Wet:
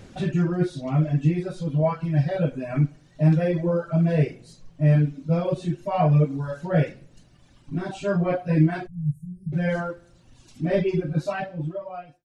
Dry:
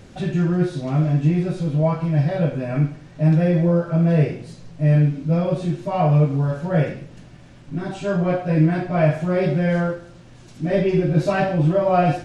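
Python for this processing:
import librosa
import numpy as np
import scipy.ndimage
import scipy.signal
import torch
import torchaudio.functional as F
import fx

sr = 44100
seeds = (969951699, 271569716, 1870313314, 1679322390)

y = fx.fade_out_tail(x, sr, length_s=1.66)
y = fx.dereverb_blind(y, sr, rt60_s=1.8)
y = fx.cheby2_bandstop(y, sr, low_hz=460.0, high_hz=4000.0, order=4, stop_db=60, at=(8.86, 9.52), fade=0.02)
y = y * 10.0 ** (-1.0 / 20.0)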